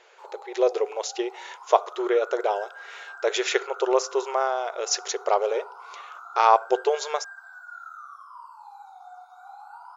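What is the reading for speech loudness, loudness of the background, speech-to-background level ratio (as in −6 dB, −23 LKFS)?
−25.0 LKFS, −42.5 LKFS, 17.5 dB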